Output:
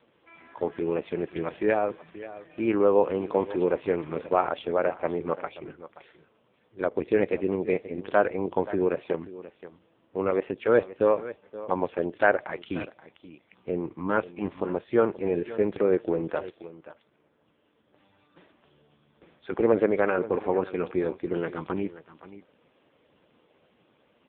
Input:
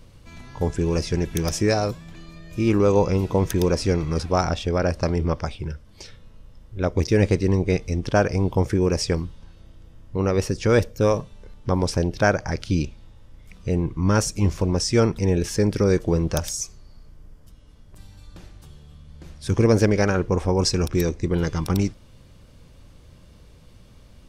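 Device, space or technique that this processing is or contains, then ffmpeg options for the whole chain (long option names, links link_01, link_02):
satellite phone: -filter_complex "[0:a]asettb=1/sr,asplit=3[link_01][link_02][link_03];[link_01]atrim=end=12.454[link_04];[link_02]atrim=start=12.45:end=12.85,asetpts=PTS-STARTPTS,afade=type=in:duration=0.004:curve=qsin,afade=type=out:start_time=0.396:duration=0.004:curve=qsin,aemphasis=mode=production:type=75fm[link_05];[link_03]atrim=start=12.846[link_06];[link_04][link_05]acrossfade=duration=0.004:curve1=hsin:curve2=qsin[link_07];[link_07][link_06]acrossfade=duration=0.004:curve1=qsin:curve2=hsin,highpass=340,lowpass=3300,aecho=1:1:529:0.158" -ar 8000 -c:a libopencore_amrnb -b:a 5150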